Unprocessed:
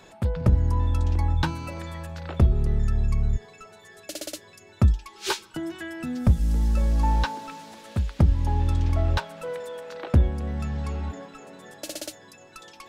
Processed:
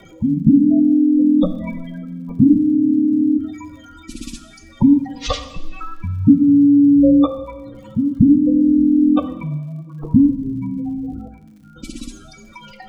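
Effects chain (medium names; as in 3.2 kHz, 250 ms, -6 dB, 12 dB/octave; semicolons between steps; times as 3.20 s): coarse spectral quantiser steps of 15 dB; 4.22–4.84 s: bass shelf 100 Hz -8.5 dB; 11.28–11.76 s: vowel filter e; spectral gate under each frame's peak -15 dB strong; wow and flutter 16 cents; frequency shift -340 Hz; crackle 82 per s -52 dBFS; 7.87–8.83 s: Butterworth band-stop 2.5 kHz, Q 3.1; two-slope reverb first 0.94 s, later 2.5 s, DRR 8.5 dB; trim +8 dB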